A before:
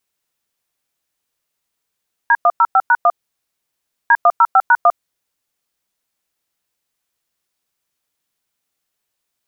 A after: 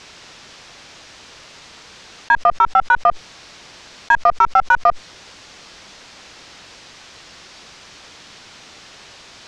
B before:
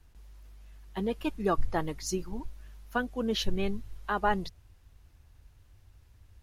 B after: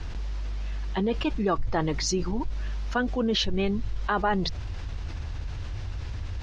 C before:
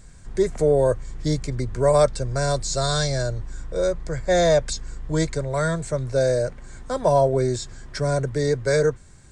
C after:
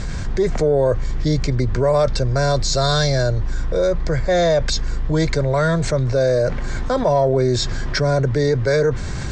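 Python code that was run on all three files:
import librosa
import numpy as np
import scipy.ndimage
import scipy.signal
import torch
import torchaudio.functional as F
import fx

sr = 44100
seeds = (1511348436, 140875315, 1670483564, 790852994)

y = scipy.signal.sosfilt(scipy.signal.butter(4, 5800.0, 'lowpass', fs=sr, output='sos'), x)
y = fx.cheby_harmonics(y, sr, harmonics=(2, 4, 5, 6), levels_db=(-20, -36, -31, -42), full_scale_db=-3.0)
y = fx.env_flatten(y, sr, amount_pct=70)
y = y * 10.0 ** (-1.5 / 20.0)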